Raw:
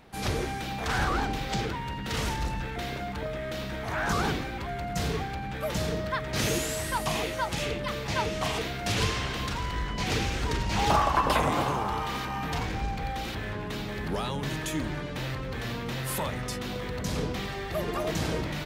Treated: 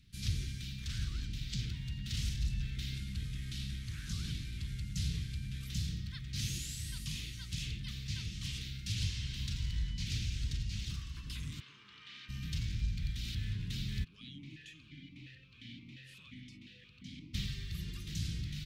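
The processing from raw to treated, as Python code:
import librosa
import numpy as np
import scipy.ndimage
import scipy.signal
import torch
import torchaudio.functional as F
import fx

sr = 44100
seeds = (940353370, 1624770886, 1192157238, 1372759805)

y = fx.cvsd(x, sr, bps=64000, at=(2.94, 5.67))
y = fx.bandpass_edges(y, sr, low_hz=560.0, high_hz=2700.0, at=(11.59, 12.28), fade=0.02)
y = fx.vowel_held(y, sr, hz=5.7, at=(14.03, 17.33), fade=0.02)
y = fx.high_shelf(y, sr, hz=6800.0, db=-9.5)
y = fx.rider(y, sr, range_db=10, speed_s=0.5)
y = scipy.signal.sosfilt(scipy.signal.cheby1(2, 1.0, [120.0, 4000.0], 'bandstop', fs=sr, output='sos'), y)
y = y * 10.0 ** (-3.0 / 20.0)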